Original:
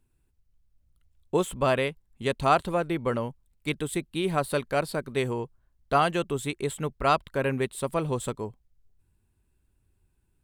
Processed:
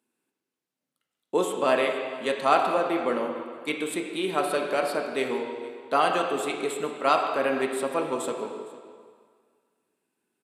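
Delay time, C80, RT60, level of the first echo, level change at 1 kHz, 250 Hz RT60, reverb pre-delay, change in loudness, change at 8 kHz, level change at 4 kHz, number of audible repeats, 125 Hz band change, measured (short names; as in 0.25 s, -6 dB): 0.46 s, 5.0 dB, 1.9 s, -20.5 dB, +2.0 dB, 1.7 s, 3 ms, +1.5 dB, +0.5 dB, +2.0 dB, 1, -14.5 dB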